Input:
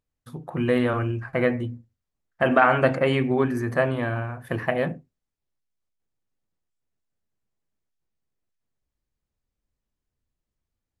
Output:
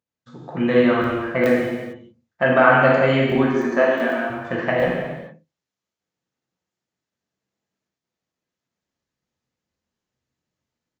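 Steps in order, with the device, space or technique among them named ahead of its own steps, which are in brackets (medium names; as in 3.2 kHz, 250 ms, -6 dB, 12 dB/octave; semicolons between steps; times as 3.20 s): call with lost packets (high-pass 140 Hz 12 dB/octave; resampled via 16 kHz; level rider gain up to 6 dB; lost packets random); 3.35–4.30 s: steep high-pass 190 Hz 48 dB/octave; gated-style reverb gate 480 ms falling, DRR -3.5 dB; trim -4 dB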